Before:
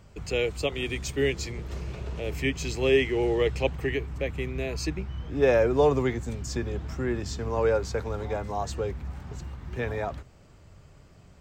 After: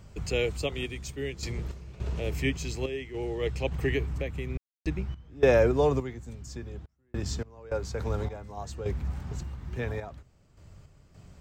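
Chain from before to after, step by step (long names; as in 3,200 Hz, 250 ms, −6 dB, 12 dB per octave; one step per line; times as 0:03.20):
bass and treble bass +4 dB, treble +3 dB
0:04.07–0:04.50: downward compressor 5 to 1, threshold −28 dBFS, peak gain reduction 5.5 dB
sample-and-hold tremolo, depth 100%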